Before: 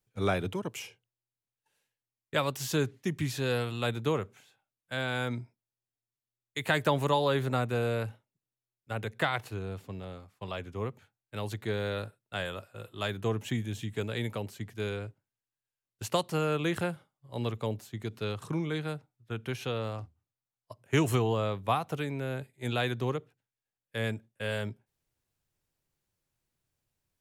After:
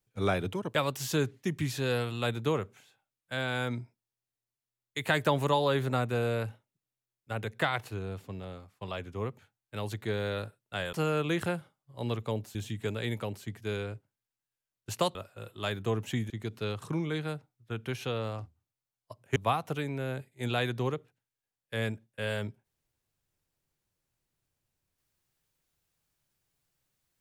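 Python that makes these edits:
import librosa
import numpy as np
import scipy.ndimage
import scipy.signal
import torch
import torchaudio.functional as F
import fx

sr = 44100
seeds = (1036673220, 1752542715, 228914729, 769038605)

y = fx.edit(x, sr, fx.cut(start_s=0.75, length_s=1.6),
    fx.swap(start_s=12.53, length_s=1.15, other_s=16.28, other_length_s=1.62),
    fx.cut(start_s=20.96, length_s=0.62), tone=tone)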